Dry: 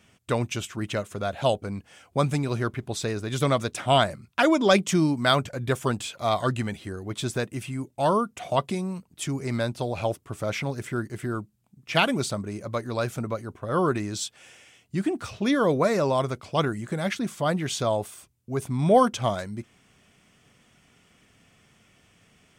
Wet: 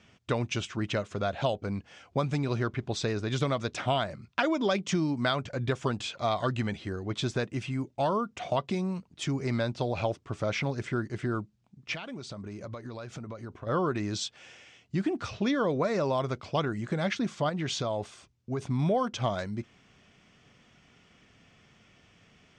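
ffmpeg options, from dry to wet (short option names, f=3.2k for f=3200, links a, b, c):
-filter_complex "[0:a]asettb=1/sr,asplit=3[a][b][c];[a]atrim=end=11.944[d];[b]atrim=start=11.94:end=13.67,asetpts=PTS-STARTPTS,afade=t=in:d=0.004:c=qsin,afade=t=out:st=1.726:d=0.004:c=qsin,acompressor=threshold=-35dB:ratio=20:attack=3.2:release=140:knee=1:detection=peak[e];[c]atrim=start=13.666[f];[d][e]acrossfade=d=0.004:c1=hsin:c2=qsin[g];[g][f]acrossfade=d=0.004:c1=qsin:c2=hsin,asettb=1/sr,asplit=3[h][i][j];[h]atrim=end=17.494[k];[i]atrim=start=17.49:end=18.61,asetpts=PTS-STARTPTS,afade=t=in:d=0.004:c=qsin,afade=t=out:st=1.116:d=0.004:c=qsin,acompressor=threshold=-26dB:ratio=6:attack=3.2:release=140:knee=1:detection=peak[l];[j]atrim=start=18.606[m];[k][l]acrossfade=d=0.004:c1=hsin:c2=qsin[n];[n][m]acrossfade=d=0.004:c1=qsin:c2=hsin,lowpass=f=6.2k:w=0.5412,lowpass=f=6.2k:w=1.3066,acompressor=threshold=-24dB:ratio=6"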